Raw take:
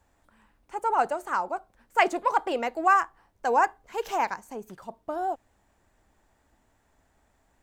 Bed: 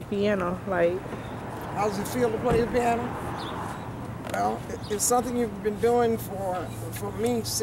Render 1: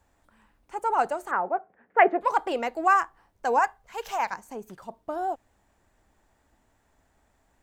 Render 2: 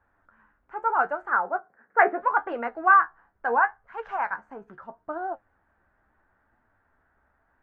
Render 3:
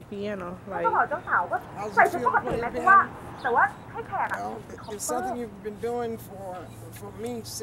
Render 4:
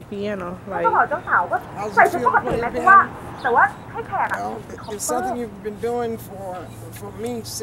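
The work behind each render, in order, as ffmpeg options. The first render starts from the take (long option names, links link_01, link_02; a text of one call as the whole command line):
ffmpeg -i in.wav -filter_complex "[0:a]asettb=1/sr,asplit=3[link_01][link_02][link_03];[link_01]atrim=end=1.314[link_04];[link_02]atrim=start=1.31:end=2.21,asetpts=PTS-STARTPTS,afade=type=in:duration=0.004:curve=qsin,afade=type=out:start_time=0.896:duration=0.004:curve=qsin,highpass=170,equalizer=frequency=180:width_type=q:width=4:gain=6,equalizer=frequency=430:width_type=q:width=4:gain=9,equalizer=frequency=730:width_type=q:width=4:gain=6,equalizer=frequency=1000:width_type=q:width=4:gain=-3,equalizer=frequency=1800:width_type=q:width=4:gain=6,lowpass=frequency=2200:width=0.5412,lowpass=frequency=2200:width=1.3066[link_05];[link_03]atrim=start=2.206[link_06];[link_04][link_05]acrossfade=duration=0.004:curve1=hsin:curve2=qsin[link_07];[link_07][link_06]acrossfade=duration=0.004:curve1=qsin:curve2=hsin,asettb=1/sr,asplit=3[link_08][link_09][link_10];[link_08]atrim=end=3.594[link_11];[link_09]atrim=start=3.59:end=4.33,asetpts=PTS-STARTPTS,afade=type=in:duration=0.004:curve=qsin,afade=type=out:start_time=0.736:duration=0.004:curve=qsin,equalizer=frequency=320:width_type=o:width=0.77:gain=-14.5[link_12];[link_10]atrim=start=4.326[link_13];[link_11][link_12]acrossfade=duration=0.004:curve1=hsin:curve2=qsin[link_14];[link_14][link_13]acrossfade=duration=0.004:curve1=qsin:curve2=hsin" out.wav
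ffmpeg -i in.wav -af "lowpass=frequency=1500:width_type=q:width=3.7,flanger=delay=8.1:depth=7.4:regen=52:speed=0.76:shape=triangular" out.wav
ffmpeg -i in.wav -i bed.wav -filter_complex "[1:a]volume=-7.5dB[link_01];[0:a][link_01]amix=inputs=2:normalize=0" out.wav
ffmpeg -i in.wav -af "volume=6dB,alimiter=limit=-1dB:level=0:latency=1" out.wav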